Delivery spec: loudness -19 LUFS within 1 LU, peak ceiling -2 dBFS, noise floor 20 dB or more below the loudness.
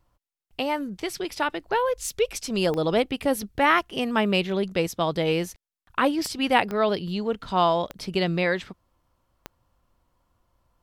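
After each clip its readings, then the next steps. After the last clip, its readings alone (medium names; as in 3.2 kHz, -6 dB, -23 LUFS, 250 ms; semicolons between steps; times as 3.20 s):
clicks found 5; loudness -25.0 LUFS; peak level -5.5 dBFS; loudness target -19.0 LUFS
-> de-click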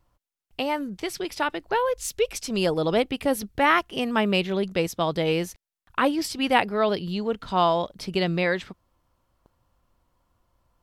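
clicks found 0; loudness -25.0 LUFS; peak level -5.5 dBFS; loudness target -19.0 LUFS
-> trim +6 dB; peak limiter -2 dBFS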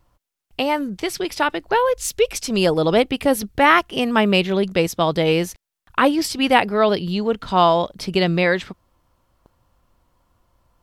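loudness -19.0 LUFS; peak level -2.0 dBFS; noise floor -84 dBFS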